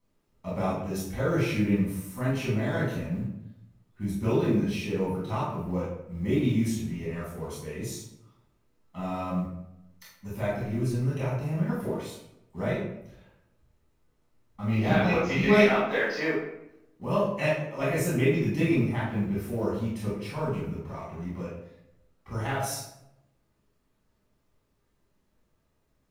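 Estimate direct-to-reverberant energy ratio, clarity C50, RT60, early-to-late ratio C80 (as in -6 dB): -9.5 dB, 1.0 dB, 0.85 s, 5.0 dB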